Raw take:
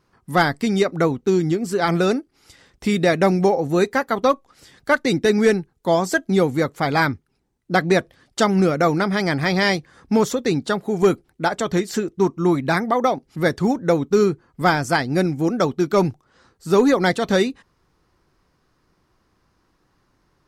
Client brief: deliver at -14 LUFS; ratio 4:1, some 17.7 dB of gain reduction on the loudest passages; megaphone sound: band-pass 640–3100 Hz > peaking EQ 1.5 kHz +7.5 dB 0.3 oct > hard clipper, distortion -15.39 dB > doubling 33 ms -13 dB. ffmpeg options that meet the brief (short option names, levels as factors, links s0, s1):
-filter_complex "[0:a]acompressor=threshold=0.02:ratio=4,highpass=640,lowpass=3100,equalizer=f=1500:t=o:w=0.3:g=7.5,asoftclip=type=hard:threshold=0.0398,asplit=2[s0][s1];[s1]adelay=33,volume=0.224[s2];[s0][s2]amix=inputs=2:normalize=0,volume=18.8"